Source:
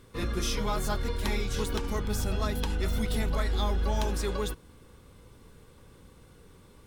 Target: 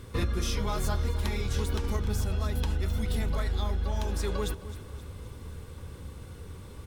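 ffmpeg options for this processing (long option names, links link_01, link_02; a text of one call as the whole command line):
ffmpeg -i in.wav -af "equalizer=frequency=79:width=1.8:gain=12,acompressor=threshold=-32dB:ratio=6,aecho=1:1:264|528|792|1056|1320:0.168|0.089|0.0472|0.025|0.0132,volume=6.5dB" out.wav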